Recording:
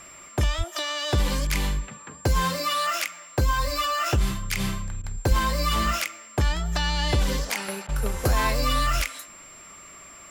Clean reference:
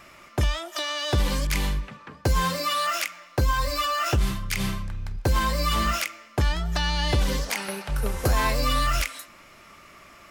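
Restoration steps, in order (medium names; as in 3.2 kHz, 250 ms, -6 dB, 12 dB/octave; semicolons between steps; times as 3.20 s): band-stop 7.4 kHz, Q 30; de-plosive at 0.57/5.28 s; interpolate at 5.02/7.87 s, 16 ms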